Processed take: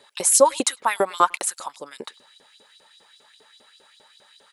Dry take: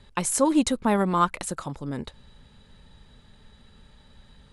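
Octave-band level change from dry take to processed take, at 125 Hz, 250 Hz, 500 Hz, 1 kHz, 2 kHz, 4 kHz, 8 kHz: under -15 dB, -10.0 dB, +5.5 dB, +4.0 dB, +5.0 dB, +6.0 dB, +9.5 dB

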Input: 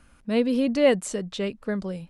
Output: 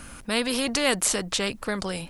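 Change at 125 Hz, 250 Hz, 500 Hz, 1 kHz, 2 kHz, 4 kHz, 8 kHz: -1.5, -5.0, -5.5, +4.0, +6.0, +9.0, +12.0 dB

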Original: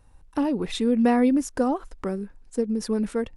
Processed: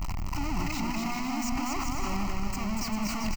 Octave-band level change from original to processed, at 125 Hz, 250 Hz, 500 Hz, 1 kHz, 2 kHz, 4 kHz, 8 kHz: n/a, -9.0 dB, -16.5 dB, -2.0 dB, +1.0 dB, +0.5 dB, +3.0 dB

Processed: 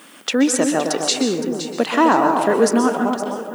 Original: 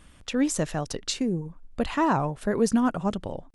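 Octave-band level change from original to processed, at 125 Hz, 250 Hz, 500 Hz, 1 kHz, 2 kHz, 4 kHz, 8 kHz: -3.0, +7.0, +10.5, +10.5, +10.5, +11.0, +10.5 dB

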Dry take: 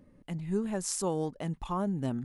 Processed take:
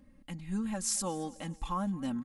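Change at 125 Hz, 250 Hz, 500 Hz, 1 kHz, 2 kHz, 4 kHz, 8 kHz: -5.5, -2.0, -8.0, -0.5, -0.5, +2.0, +2.0 dB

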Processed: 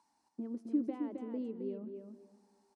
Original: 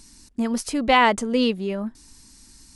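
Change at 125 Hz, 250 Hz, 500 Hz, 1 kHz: n/a, -12.5 dB, -18.5 dB, -34.0 dB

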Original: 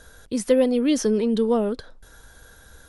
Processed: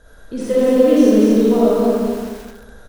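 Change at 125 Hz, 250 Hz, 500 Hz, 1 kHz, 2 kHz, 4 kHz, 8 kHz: n/a, +8.5 dB, +8.0 dB, +8.0 dB, +4.5 dB, +1.5 dB, -0.5 dB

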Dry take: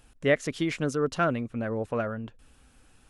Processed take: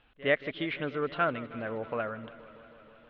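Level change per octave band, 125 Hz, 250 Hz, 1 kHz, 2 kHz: -9.0, -7.0, -1.5, -0.5 dB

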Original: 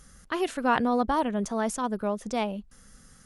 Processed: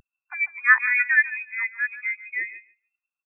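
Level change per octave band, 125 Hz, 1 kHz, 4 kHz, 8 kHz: under -30 dB, -7.0 dB, under -40 dB, under -40 dB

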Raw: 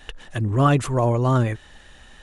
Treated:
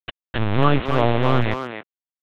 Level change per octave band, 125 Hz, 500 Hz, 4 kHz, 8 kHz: -2.0 dB, +1.5 dB, +7.0 dB, under -15 dB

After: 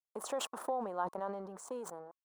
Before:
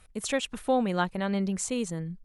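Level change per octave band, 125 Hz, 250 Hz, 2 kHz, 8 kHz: -22.0, -18.5, -15.5, -11.0 dB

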